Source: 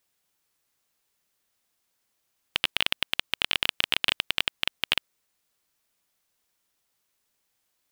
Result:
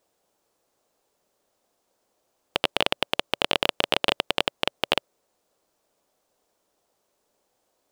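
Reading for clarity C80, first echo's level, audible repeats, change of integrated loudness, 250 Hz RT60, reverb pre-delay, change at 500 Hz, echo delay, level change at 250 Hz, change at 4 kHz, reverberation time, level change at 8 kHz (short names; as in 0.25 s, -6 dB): none, none, none, +1.0 dB, none, none, +15.5 dB, none, +10.5 dB, 0.0 dB, none, 0.0 dB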